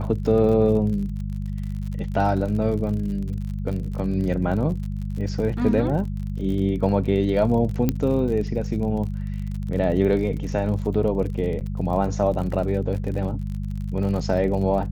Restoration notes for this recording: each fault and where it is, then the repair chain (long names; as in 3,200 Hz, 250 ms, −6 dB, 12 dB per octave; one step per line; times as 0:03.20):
surface crackle 48 per second −31 dBFS
mains hum 50 Hz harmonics 4 −28 dBFS
0:07.89: click −8 dBFS
0:11.60–0:11.61: drop-out 8.4 ms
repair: click removal
hum removal 50 Hz, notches 4
repair the gap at 0:11.60, 8.4 ms